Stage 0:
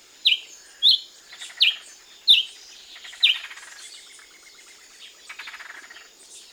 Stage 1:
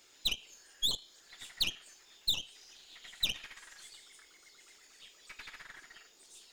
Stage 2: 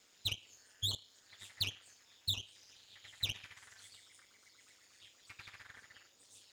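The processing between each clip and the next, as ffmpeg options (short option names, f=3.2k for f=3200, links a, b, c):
-af "acompressor=threshold=-21dB:ratio=16,aeval=exprs='0.158*(cos(1*acos(clip(val(0)/0.158,-1,1)))-cos(1*PI/2))+0.0224*(cos(3*acos(clip(val(0)/0.158,-1,1)))-cos(3*PI/2))+0.0251*(cos(4*acos(clip(val(0)/0.158,-1,1)))-cos(4*PI/2))':c=same,volume=-6.5dB"
-af "aeval=exprs='val(0)*sin(2*PI*100*n/s)':c=same,volume=-2dB"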